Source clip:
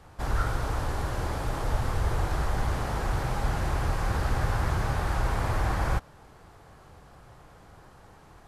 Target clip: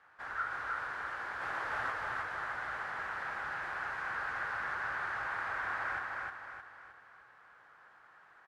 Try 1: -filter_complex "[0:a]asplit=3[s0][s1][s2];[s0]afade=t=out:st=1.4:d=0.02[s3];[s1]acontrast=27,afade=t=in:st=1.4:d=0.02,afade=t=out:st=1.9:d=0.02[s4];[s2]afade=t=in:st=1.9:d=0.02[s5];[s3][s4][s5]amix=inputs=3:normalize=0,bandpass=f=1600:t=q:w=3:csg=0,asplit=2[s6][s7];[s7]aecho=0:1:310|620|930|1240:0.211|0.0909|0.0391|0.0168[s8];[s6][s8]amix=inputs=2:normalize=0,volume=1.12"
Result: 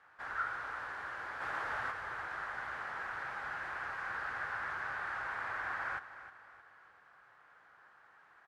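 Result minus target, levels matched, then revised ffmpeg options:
echo-to-direct -11.5 dB
-filter_complex "[0:a]asplit=3[s0][s1][s2];[s0]afade=t=out:st=1.4:d=0.02[s3];[s1]acontrast=27,afade=t=in:st=1.4:d=0.02,afade=t=out:st=1.9:d=0.02[s4];[s2]afade=t=in:st=1.9:d=0.02[s5];[s3][s4][s5]amix=inputs=3:normalize=0,bandpass=f=1600:t=q:w=3:csg=0,asplit=2[s6][s7];[s7]aecho=0:1:310|620|930|1240|1550|1860:0.794|0.342|0.147|0.0632|0.0272|0.0117[s8];[s6][s8]amix=inputs=2:normalize=0,volume=1.12"

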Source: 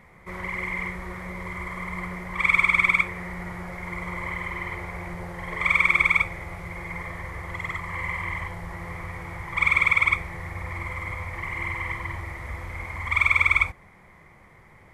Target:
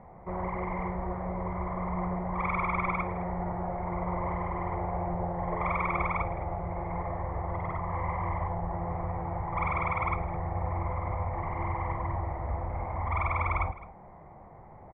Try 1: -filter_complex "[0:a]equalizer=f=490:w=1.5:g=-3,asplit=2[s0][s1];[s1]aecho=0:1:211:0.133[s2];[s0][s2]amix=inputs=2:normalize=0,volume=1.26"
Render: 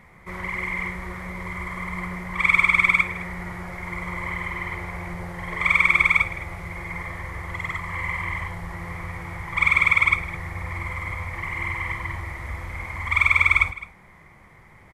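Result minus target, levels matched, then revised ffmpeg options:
1 kHz band -9.5 dB
-filter_complex "[0:a]lowpass=f=740:t=q:w=3.1,equalizer=f=490:w=1.5:g=-3,asplit=2[s0][s1];[s1]aecho=0:1:211:0.133[s2];[s0][s2]amix=inputs=2:normalize=0,volume=1.26"

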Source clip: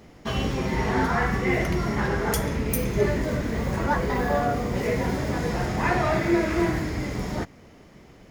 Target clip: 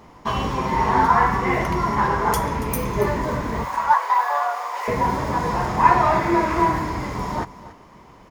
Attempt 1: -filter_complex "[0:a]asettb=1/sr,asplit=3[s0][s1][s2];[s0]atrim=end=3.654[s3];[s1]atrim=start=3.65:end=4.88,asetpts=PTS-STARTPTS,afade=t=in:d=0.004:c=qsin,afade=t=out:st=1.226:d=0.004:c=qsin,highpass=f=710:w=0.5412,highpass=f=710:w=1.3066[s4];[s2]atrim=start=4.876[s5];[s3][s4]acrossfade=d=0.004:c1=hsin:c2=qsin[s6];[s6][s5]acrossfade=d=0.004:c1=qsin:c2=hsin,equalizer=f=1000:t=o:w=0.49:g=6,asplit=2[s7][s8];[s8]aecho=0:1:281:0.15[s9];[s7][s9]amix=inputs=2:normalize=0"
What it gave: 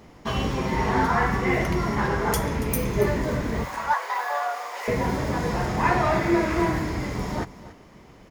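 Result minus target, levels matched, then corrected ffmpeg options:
1 kHz band -4.0 dB
-filter_complex "[0:a]asettb=1/sr,asplit=3[s0][s1][s2];[s0]atrim=end=3.654[s3];[s1]atrim=start=3.65:end=4.88,asetpts=PTS-STARTPTS,afade=t=in:d=0.004:c=qsin,afade=t=out:st=1.226:d=0.004:c=qsin,highpass=f=710:w=0.5412,highpass=f=710:w=1.3066[s4];[s2]atrim=start=4.876[s5];[s3][s4]acrossfade=d=0.004:c1=hsin:c2=qsin[s6];[s6][s5]acrossfade=d=0.004:c1=qsin:c2=hsin,equalizer=f=1000:t=o:w=0.49:g=17,asplit=2[s7][s8];[s8]aecho=0:1:281:0.15[s9];[s7][s9]amix=inputs=2:normalize=0"

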